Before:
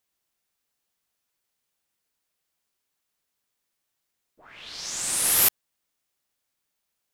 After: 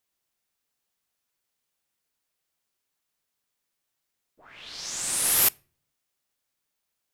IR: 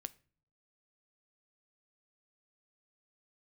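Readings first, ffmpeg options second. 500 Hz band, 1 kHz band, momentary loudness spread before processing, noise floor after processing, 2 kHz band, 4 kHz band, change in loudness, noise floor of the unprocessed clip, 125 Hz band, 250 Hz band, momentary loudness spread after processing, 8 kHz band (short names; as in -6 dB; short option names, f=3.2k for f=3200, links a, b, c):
-1.0 dB, -1.0 dB, 17 LU, -82 dBFS, -1.0 dB, -1.0 dB, -1.0 dB, -80 dBFS, -1.0 dB, -1.5 dB, 17 LU, -1.0 dB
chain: -filter_complex "[0:a]asplit=2[a][b];[1:a]atrim=start_sample=2205[c];[b][c]afir=irnorm=-1:irlink=0,volume=-1.5dB[d];[a][d]amix=inputs=2:normalize=0,volume=-5dB"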